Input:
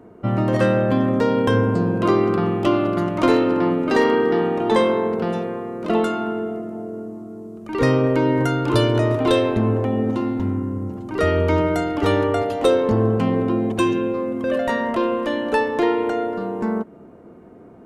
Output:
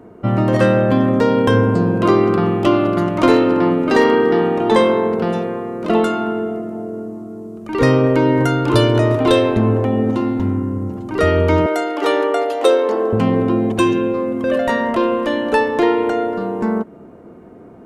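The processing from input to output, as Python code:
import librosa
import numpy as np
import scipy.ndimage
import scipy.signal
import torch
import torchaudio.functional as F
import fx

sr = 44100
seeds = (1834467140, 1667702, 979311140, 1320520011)

y = fx.highpass(x, sr, hz=340.0, slope=24, at=(11.66, 13.13))
y = y * 10.0 ** (4.0 / 20.0)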